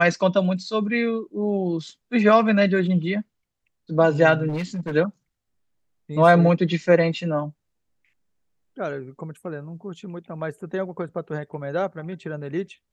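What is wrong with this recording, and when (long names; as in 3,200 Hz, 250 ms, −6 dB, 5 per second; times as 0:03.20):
0:04.48–0:04.95: clipping −23.5 dBFS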